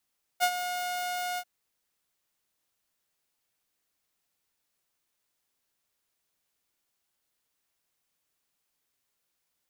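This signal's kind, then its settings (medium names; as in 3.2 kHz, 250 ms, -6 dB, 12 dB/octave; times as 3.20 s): ADSR saw 719 Hz, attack 35 ms, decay 66 ms, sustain -10.5 dB, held 0.98 s, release 58 ms -17.5 dBFS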